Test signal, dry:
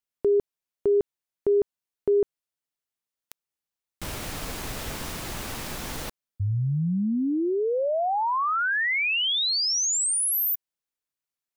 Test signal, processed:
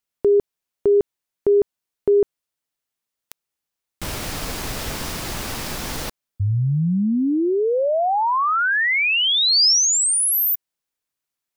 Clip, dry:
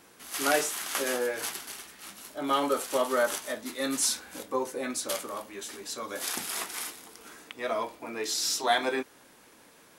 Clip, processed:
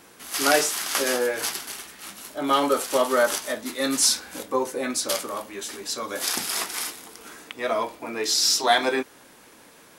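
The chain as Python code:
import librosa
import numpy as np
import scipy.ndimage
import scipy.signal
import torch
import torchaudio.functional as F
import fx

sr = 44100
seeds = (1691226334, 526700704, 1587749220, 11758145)

y = fx.dynamic_eq(x, sr, hz=5000.0, q=2.6, threshold_db=-45.0, ratio=4.0, max_db=5)
y = y * librosa.db_to_amplitude(5.5)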